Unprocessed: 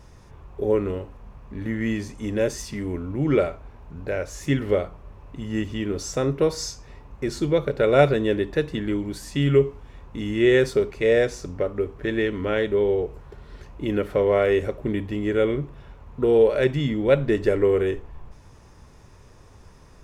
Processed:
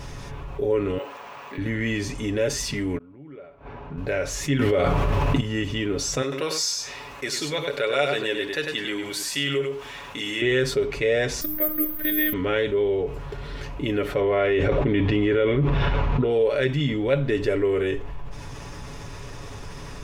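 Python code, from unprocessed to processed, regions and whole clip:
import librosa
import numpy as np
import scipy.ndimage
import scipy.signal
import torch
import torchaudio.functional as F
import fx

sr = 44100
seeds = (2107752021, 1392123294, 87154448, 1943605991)

y = fx.chain(x, sr, fx.highpass(hz=600.0, slope=12),
    fx.resample_bad(factor=2, down='filtered', up='hold'), at=(0.98, 1.58))
y = fx.chain(y, sr, fx.highpass(hz=220.0, slope=6),
    fx.gate_flip(shuts_db=-27.0, range_db=-37),
    fx.spacing_loss(db_at_10k=29), at=(2.97, 3.98))
y = fx.chain(y, sr, fx.highpass(hz=46.0, slope=12),
    fx.env_flatten(amount_pct=100), at=(4.59, 5.41))
y = fx.chain(y, sr, fx.highpass(hz=1000.0, slope=6),
    fx.high_shelf(hz=5400.0, db=5.0),
    fx.echo_single(ms=100, db=-7.5), at=(6.22, 10.42))
y = fx.chain(y, sr, fx.comb(ms=4.8, depth=0.47),
    fx.resample_bad(factor=3, down='filtered', up='zero_stuff'),
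    fx.robotise(hz=307.0), at=(11.41, 12.33))
y = fx.chain(y, sr, fx.lowpass(hz=3900.0, slope=12),
    fx.env_flatten(amount_pct=100), at=(14.21, 16.31))
y = fx.peak_eq(y, sr, hz=3000.0, db=5.5, octaves=1.4)
y = y + 0.47 * np.pad(y, (int(7.1 * sr / 1000.0), 0))[:len(y)]
y = fx.env_flatten(y, sr, amount_pct=50)
y = F.gain(torch.from_numpy(y), -7.5).numpy()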